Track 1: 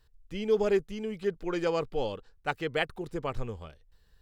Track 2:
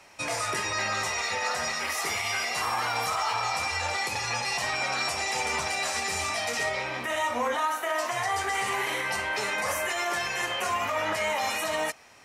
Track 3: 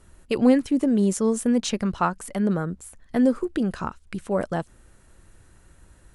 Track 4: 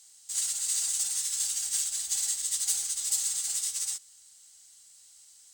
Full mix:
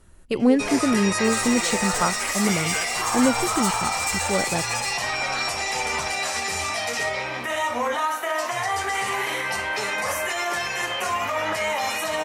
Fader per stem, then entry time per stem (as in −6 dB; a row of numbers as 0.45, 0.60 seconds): −6.5, +3.0, −0.5, −1.5 decibels; 0.00, 0.40, 0.00, 0.95 seconds